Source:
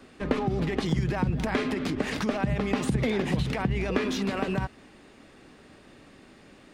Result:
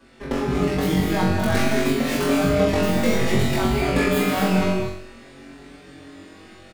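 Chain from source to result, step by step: tracing distortion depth 0.27 ms; non-linear reverb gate 0.27 s rising, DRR 2 dB; AGC gain up to 5 dB; 3.73–4.28 notch 5800 Hz, Q 8.4; flutter echo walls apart 3.7 m, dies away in 0.65 s; endless flanger 5.6 ms +0.58 Hz

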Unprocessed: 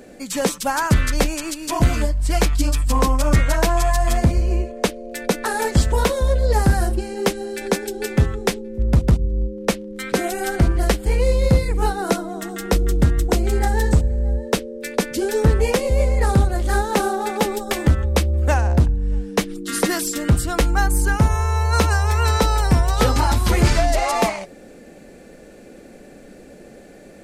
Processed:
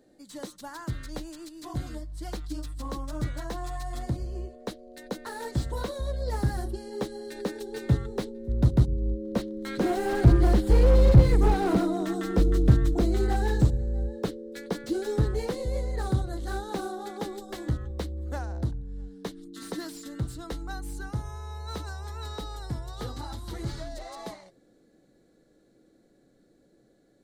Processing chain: Doppler pass-by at 11.15, 12 m/s, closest 13 m; thirty-one-band EQ 125 Hz +9 dB, 315 Hz +8 dB, 2500 Hz -11 dB, 4000 Hz +8 dB; slew limiter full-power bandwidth 42 Hz

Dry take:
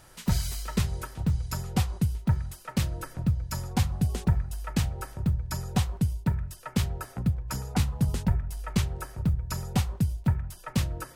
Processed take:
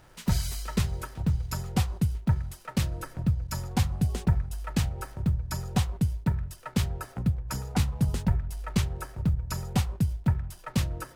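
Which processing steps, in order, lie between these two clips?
backlash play -51 dBFS

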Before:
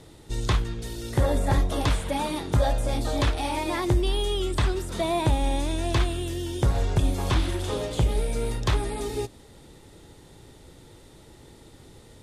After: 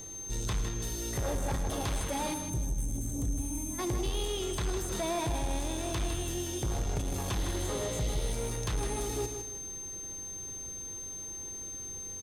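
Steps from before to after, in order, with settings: spectral gain 2.34–3.79, 320–7200 Hz -23 dB; whine 6300 Hz -42 dBFS; high shelf 11000 Hz +11.5 dB; in parallel at -3 dB: limiter -20.5 dBFS, peak gain reduction 10 dB; on the sum: soft clip -21.5 dBFS, distortion -10 dB; spectral repair 7.43–8.31, 1900–6100 Hz before; on a send: echo 0.107 s -13.5 dB; on the sum: lo-fi delay 0.157 s, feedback 35%, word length 9-bit, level -7.5 dB; gain -7 dB

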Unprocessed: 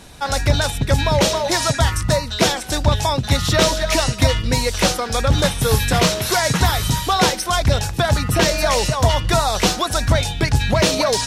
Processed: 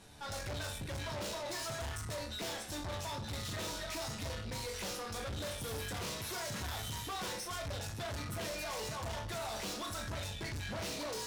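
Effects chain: resonator bank D2 sus4, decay 0.38 s; tube stage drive 38 dB, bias 0.4

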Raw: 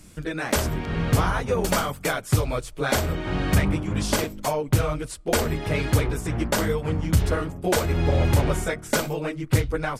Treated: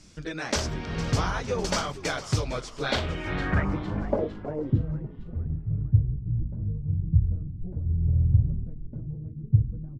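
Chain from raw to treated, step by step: low-pass sweep 5600 Hz -> 120 Hz, 2.71–5.25; frequency-shifting echo 0.456 s, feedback 49%, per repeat -100 Hz, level -15 dB; gain -5 dB

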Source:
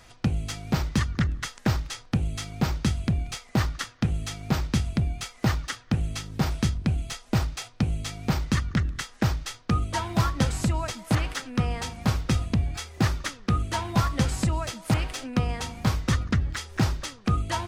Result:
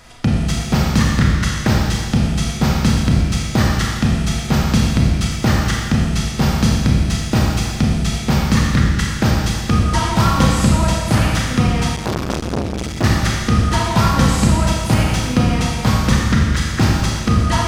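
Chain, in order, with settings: Schroeder reverb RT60 1.7 s, combs from 28 ms, DRR -2.5 dB; 11.96–13.04 core saturation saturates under 1000 Hz; gain +7 dB

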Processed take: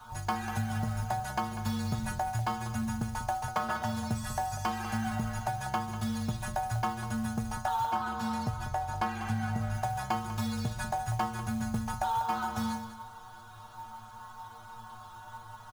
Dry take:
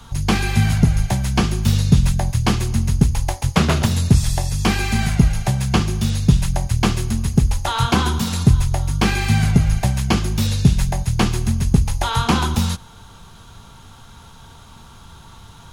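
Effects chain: band shelf 1000 Hz +13.5 dB; metallic resonator 110 Hz, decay 0.46 s, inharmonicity 0.008; compressor 6:1, threshold -29 dBFS, peak gain reduction 13.5 dB; echo 0.194 s -11.5 dB; companded quantiser 6-bit; 7.92–9.75 high shelf 6000 Hz -6.5 dB

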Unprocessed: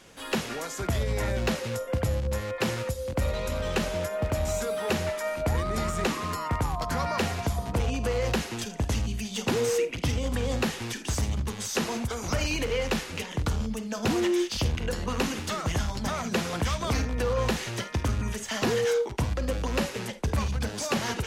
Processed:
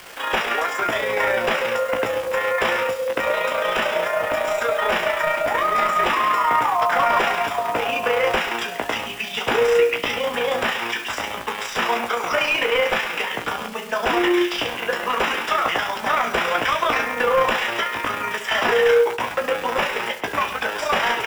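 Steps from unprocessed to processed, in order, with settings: HPF 720 Hz 12 dB/oct; sine folder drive 11 dB, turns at -15.5 dBFS; polynomial smoothing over 25 samples; bit-crush 7-bit; AM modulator 29 Hz, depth 50%; doubler 17 ms -5 dB; echo 0.125 s -13.5 dB; gain +3.5 dB

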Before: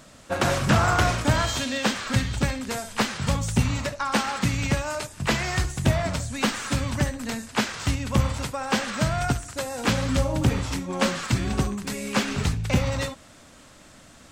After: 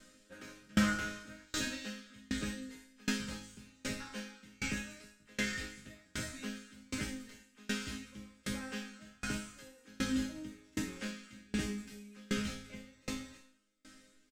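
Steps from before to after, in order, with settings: band shelf 840 Hz -12 dB 1.1 oct; resonator bank G#3 major, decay 0.73 s; echo 0.321 s -8.5 dB; dB-ramp tremolo decaying 1.3 Hz, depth 32 dB; gain +17 dB

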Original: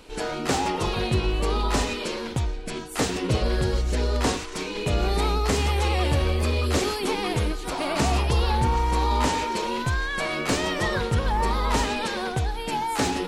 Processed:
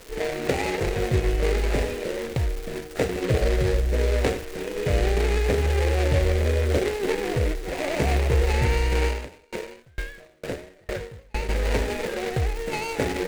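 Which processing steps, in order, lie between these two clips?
median filter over 41 samples; ten-band EQ 250 Hz -7 dB, 500 Hz +7 dB, 1000 Hz -4 dB, 2000 Hz +10 dB, 4000 Hz +4 dB, 8000 Hz +8 dB; crackle 380/s -33 dBFS; 9.07–11.49 dB-ramp tremolo decaying 2.2 Hz, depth 36 dB; gain +2 dB

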